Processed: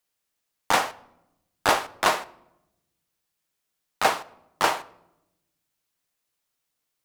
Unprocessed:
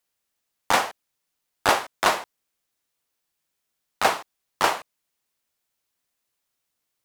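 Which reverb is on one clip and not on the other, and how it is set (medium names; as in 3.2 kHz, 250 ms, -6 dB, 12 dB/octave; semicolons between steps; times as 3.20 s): simulated room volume 3100 m³, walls furnished, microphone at 0.5 m; trim -1 dB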